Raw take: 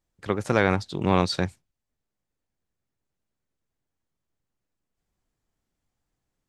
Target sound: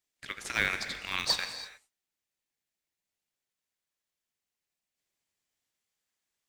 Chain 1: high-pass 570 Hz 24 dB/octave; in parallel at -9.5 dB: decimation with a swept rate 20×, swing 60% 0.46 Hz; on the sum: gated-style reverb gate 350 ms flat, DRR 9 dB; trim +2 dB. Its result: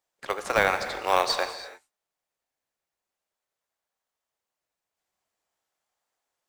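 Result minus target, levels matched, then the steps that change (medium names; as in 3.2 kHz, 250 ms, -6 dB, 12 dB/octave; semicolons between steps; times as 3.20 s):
500 Hz band +13.0 dB
change: high-pass 1.8 kHz 24 dB/octave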